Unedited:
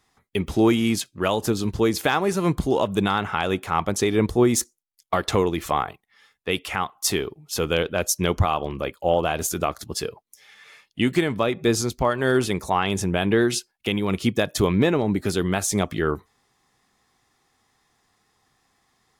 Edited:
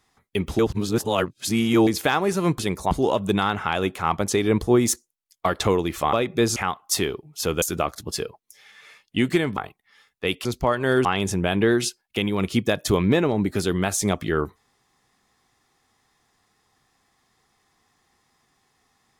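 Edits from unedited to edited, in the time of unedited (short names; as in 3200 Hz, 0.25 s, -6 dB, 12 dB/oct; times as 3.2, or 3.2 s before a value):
0.59–1.87 reverse
5.81–6.69 swap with 11.4–11.83
7.75–9.45 cut
12.43–12.75 move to 2.59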